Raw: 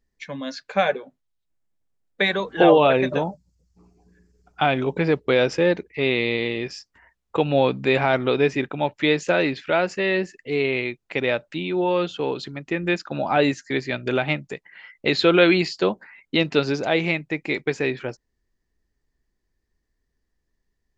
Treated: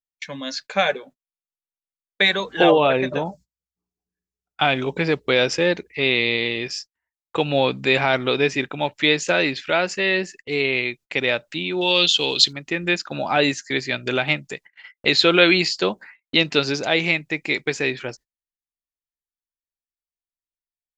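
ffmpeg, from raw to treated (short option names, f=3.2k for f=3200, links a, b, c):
-filter_complex "[0:a]asettb=1/sr,asplit=3[a][b][c];[a]atrim=end=2.714[d];[b]atrim=start=2.71:end=3.26,asetpts=PTS-STARTPTS,afade=t=in:d=0.004:c=qsin,afade=t=out:st=0.546:d=0.004:c=qsin,highshelf=f=2.9k:g=-9.5[e];[c]atrim=start=3.256[f];[d][e]acrossfade=d=0.004:c1=hsin:c2=qsin[g];[g][f]acrossfade=d=0.004:c1=qsin:c2=hsin,asettb=1/sr,asplit=3[h][i][j];[h]atrim=end=11.814[k];[i]atrim=start=11.81:end=12.53,asetpts=PTS-STARTPTS,afade=t=in:d=0.004:c=qsin,afade=t=out:st=0.716:d=0.004:c=qsin,highshelf=f=2.3k:t=q:w=1.5:g=12[l];[j]atrim=start=12.526[m];[k][l]acrossfade=d=0.004:c1=hsin:c2=qsin[n];[n][m]acrossfade=d=0.004:c1=qsin:c2=hsin,agate=range=-32dB:threshold=-43dB:ratio=16:detection=peak,highshelf=f=2.2k:g=11.5,volume=-1.5dB"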